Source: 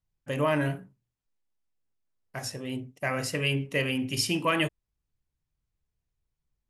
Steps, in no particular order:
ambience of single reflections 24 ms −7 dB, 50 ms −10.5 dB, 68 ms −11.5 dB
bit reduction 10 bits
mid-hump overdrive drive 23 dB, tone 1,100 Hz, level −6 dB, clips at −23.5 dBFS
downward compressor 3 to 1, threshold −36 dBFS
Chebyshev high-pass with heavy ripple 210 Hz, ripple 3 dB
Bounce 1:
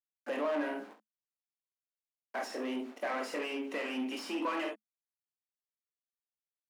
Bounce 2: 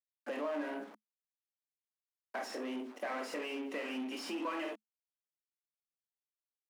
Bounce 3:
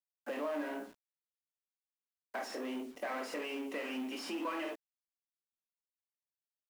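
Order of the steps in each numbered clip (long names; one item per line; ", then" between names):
bit reduction, then downward compressor, then ambience of single reflections, then mid-hump overdrive, then Chebyshev high-pass with heavy ripple
ambience of single reflections, then bit reduction, then mid-hump overdrive, then downward compressor, then Chebyshev high-pass with heavy ripple
ambience of single reflections, then mid-hump overdrive, then downward compressor, then Chebyshev high-pass with heavy ripple, then bit reduction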